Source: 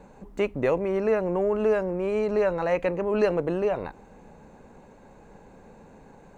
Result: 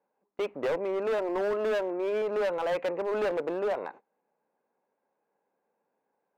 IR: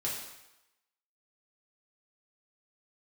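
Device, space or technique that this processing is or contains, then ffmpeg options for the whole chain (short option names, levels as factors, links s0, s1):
walkie-talkie: -filter_complex "[0:a]asettb=1/sr,asplit=3[s0][s1][s2];[s0]atrim=end=1.184[s3];[s1]atrim=start=1.18:end=2.22,asetpts=PTS-STARTPTS,afade=t=in:d=0.004:c=qsin,afade=t=out:st=1.036:d=0.004:c=qsin,aecho=1:1:3:0.51,atrim=end_sample=45864[s4];[s2]atrim=start=2.216[s5];[s3][s4]acrossfade=d=0.004:c1=hsin:c2=qsin[s6];[s6][s5]acrossfade=d=0.004:c1=qsin:c2=hsin,highpass=420,lowpass=2300,asoftclip=type=hard:threshold=0.0562,agate=range=0.0562:threshold=0.00562:ratio=16:detection=peak"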